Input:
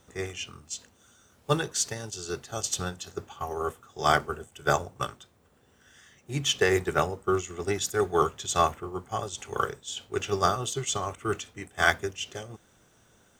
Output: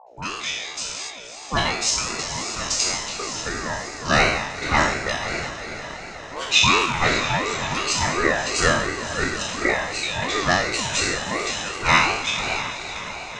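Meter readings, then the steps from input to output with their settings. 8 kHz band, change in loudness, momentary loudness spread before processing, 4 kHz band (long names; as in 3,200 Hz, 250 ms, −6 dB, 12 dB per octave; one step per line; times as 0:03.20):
+7.5 dB, +7.0 dB, 13 LU, +11.0 dB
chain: peak hold with a decay on every bin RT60 0.97 s
noise gate −45 dBFS, range −19 dB
dynamic equaliser 4,500 Hz, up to −4 dB, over −39 dBFS, Q 0.76
reversed playback
upward compression, threshold −33 dBFS
reversed playback
loudspeaker in its box 280–7,300 Hz, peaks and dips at 410 Hz −4 dB, 1,900 Hz +6 dB, 3,200 Hz +9 dB, 5,500 Hz +9 dB
all-pass dispersion highs, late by 67 ms, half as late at 610 Hz
mains hum 60 Hz, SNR 24 dB
on a send: feedback delay with all-pass diffusion 567 ms, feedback 53%, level −9 dB
on the sum: ring modulator whose carrier an LFO sweeps 660 Hz, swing 25%, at 2.8 Hz
level +5.5 dB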